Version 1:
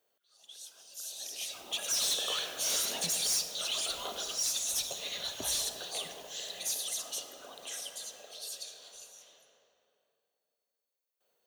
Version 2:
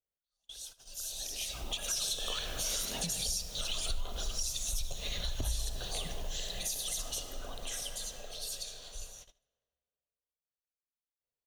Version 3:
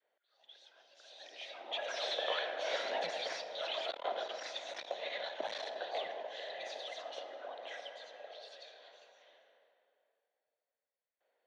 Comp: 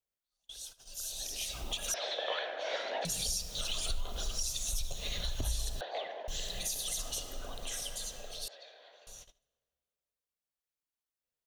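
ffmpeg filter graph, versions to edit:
-filter_complex "[2:a]asplit=3[s0][s1][s2];[1:a]asplit=4[s3][s4][s5][s6];[s3]atrim=end=1.942[s7];[s0]atrim=start=1.938:end=3.052[s8];[s4]atrim=start=3.048:end=5.812[s9];[s1]atrim=start=5.808:end=6.282[s10];[s5]atrim=start=6.278:end=8.482[s11];[s2]atrim=start=8.478:end=9.072[s12];[s6]atrim=start=9.068[s13];[s7][s8]acrossfade=d=0.004:c1=hsin:c2=hsin[s14];[s14][s9]acrossfade=d=0.004:c1=hsin:c2=hsin[s15];[s15][s10]acrossfade=d=0.004:c1=hsin:c2=hsin[s16];[s16][s11]acrossfade=d=0.004:c1=hsin:c2=hsin[s17];[s17][s12]acrossfade=d=0.004:c1=hsin:c2=hsin[s18];[s18][s13]acrossfade=d=0.004:c1=hsin:c2=hsin"

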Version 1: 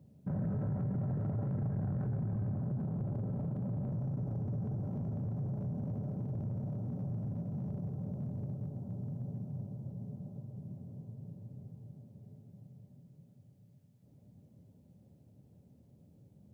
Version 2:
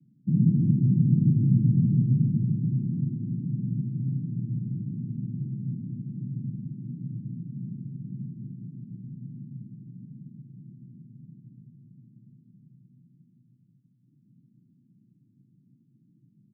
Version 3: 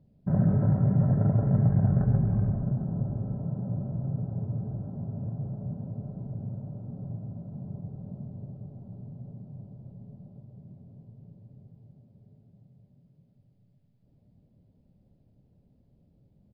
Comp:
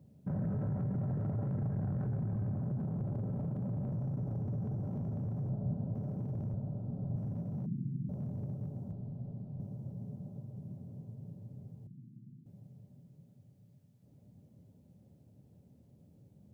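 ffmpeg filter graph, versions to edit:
-filter_complex "[2:a]asplit=3[s0][s1][s2];[1:a]asplit=2[s3][s4];[0:a]asplit=6[s5][s6][s7][s8][s9][s10];[s5]atrim=end=5.492[s11];[s0]atrim=start=5.488:end=5.952[s12];[s6]atrim=start=5.948:end=6.542[s13];[s1]atrim=start=6.538:end=7.162[s14];[s7]atrim=start=7.158:end=7.662[s15];[s3]atrim=start=7.658:end=8.092[s16];[s8]atrim=start=8.088:end=8.922[s17];[s2]atrim=start=8.918:end=9.602[s18];[s9]atrim=start=9.598:end=11.872[s19];[s4]atrim=start=11.868:end=12.462[s20];[s10]atrim=start=12.458[s21];[s11][s12]acrossfade=d=0.004:c1=hsin:c2=hsin[s22];[s22][s13]acrossfade=d=0.004:c1=hsin:c2=hsin[s23];[s23][s14]acrossfade=d=0.004:c1=hsin:c2=hsin[s24];[s24][s15]acrossfade=d=0.004:c1=hsin:c2=hsin[s25];[s25][s16]acrossfade=d=0.004:c1=hsin:c2=hsin[s26];[s26][s17]acrossfade=d=0.004:c1=hsin:c2=hsin[s27];[s27][s18]acrossfade=d=0.004:c1=hsin:c2=hsin[s28];[s28][s19]acrossfade=d=0.004:c1=hsin:c2=hsin[s29];[s29][s20]acrossfade=d=0.004:c1=hsin:c2=hsin[s30];[s30][s21]acrossfade=d=0.004:c1=hsin:c2=hsin"

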